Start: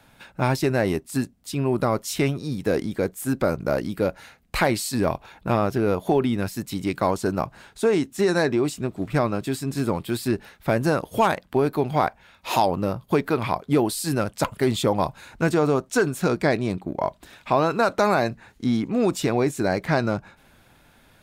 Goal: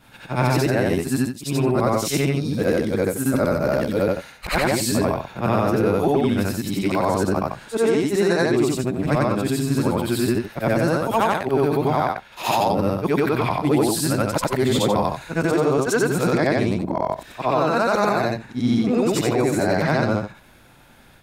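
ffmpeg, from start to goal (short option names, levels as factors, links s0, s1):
-af "afftfilt=real='re':imag='-im':win_size=8192:overlap=0.75,alimiter=level_in=7.94:limit=0.891:release=50:level=0:latency=1,volume=0.355"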